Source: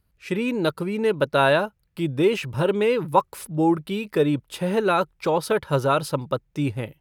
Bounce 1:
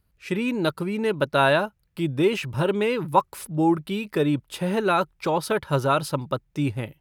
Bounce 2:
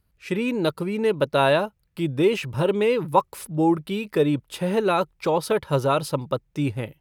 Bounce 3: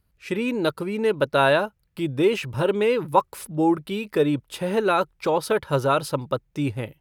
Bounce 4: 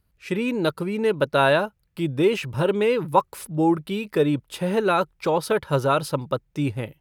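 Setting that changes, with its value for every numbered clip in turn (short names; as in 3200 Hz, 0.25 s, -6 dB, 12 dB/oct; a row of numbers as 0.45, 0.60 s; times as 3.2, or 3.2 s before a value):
dynamic EQ, frequency: 480, 1500, 170, 7500 Hz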